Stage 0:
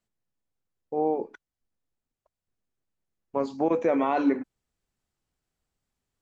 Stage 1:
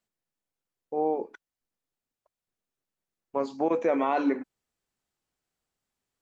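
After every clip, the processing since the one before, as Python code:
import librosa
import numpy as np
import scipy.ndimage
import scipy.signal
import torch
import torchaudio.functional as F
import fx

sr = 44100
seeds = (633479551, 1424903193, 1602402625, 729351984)

y = fx.low_shelf(x, sr, hz=160.0, db=-11.0)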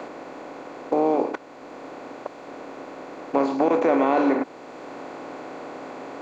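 y = fx.bin_compress(x, sr, power=0.4)
y = fx.band_squash(y, sr, depth_pct=40)
y = y * librosa.db_to_amplitude(2.5)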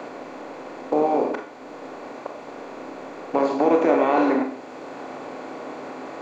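y = fx.rev_schroeder(x, sr, rt60_s=0.46, comb_ms=27, drr_db=3.5)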